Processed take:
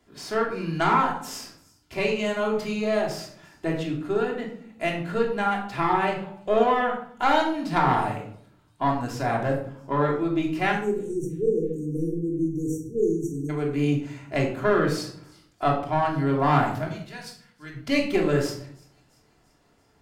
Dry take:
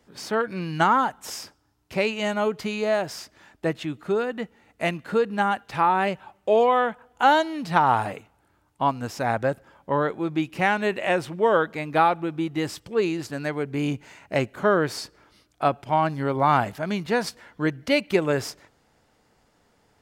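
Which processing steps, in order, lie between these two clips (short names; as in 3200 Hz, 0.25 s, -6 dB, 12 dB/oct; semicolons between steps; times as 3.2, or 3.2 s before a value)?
one diode to ground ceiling -16 dBFS; 10.72–13.5 spectral delete 510–5600 Hz; 16.88–17.74 passive tone stack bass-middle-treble 5-5-5; thin delay 0.34 s, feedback 56%, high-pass 5200 Hz, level -21 dB; shoebox room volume 960 m³, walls furnished, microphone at 3.1 m; gain -4 dB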